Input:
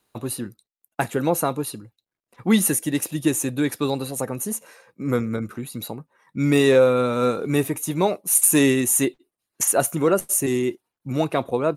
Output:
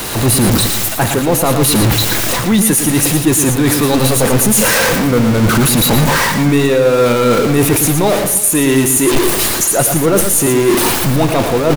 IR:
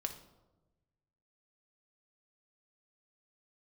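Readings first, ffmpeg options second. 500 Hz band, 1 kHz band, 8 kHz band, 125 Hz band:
+8.5 dB, +11.5 dB, +10.5 dB, +14.0 dB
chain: -filter_complex "[0:a]aeval=exprs='val(0)+0.5*0.106*sgn(val(0))':c=same,areverse,acompressor=threshold=-24dB:ratio=5,areverse,lowshelf=f=78:g=6,aecho=1:1:114|329:0.422|0.119,asplit=2[a][b];[1:a]atrim=start_sample=2205,asetrate=33075,aresample=44100[c];[b][c]afir=irnorm=-1:irlink=0,volume=-11dB[d];[a][d]amix=inputs=2:normalize=0,dynaudnorm=f=120:g=3:m=10dB,volume=1.5dB"

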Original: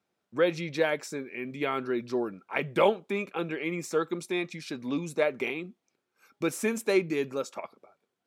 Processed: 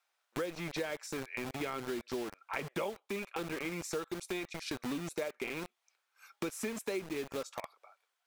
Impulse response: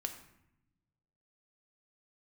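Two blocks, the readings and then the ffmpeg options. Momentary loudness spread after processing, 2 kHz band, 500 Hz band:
4 LU, -8.0 dB, -10.5 dB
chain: -filter_complex "[0:a]acrossover=split=730|4000[a][b][c];[a]acrusher=bits=5:mix=0:aa=0.000001[d];[d][b][c]amix=inputs=3:normalize=0,acompressor=threshold=-40dB:ratio=5,volume=4dB"

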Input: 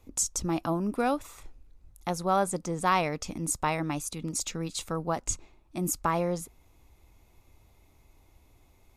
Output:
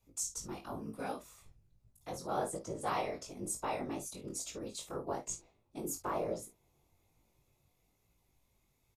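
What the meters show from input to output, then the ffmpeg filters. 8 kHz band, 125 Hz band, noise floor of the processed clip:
-8.5 dB, -14.0 dB, -76 dBFS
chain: -filter_complex "[0:a]highshelf=f=2.8k:g=8,acrossover=split=350|680|4000[a][b][c][d];[b]dynaudnorm=f=340:g=13:m=13dB[e];[a][e][c][d]amix=inputs=4:normalize=0,afftfilt=real='hypot(re,im)*cos(2*PI*random(0))':imag='hypot(re,im)*sin(2*PI*random(1))':win_size=512:overlap=0.75,aecho=1:1:36|51:0.224|0.224,flanger=delay=18:depth=4.3:speed=1.1,volume=-6.5dB"

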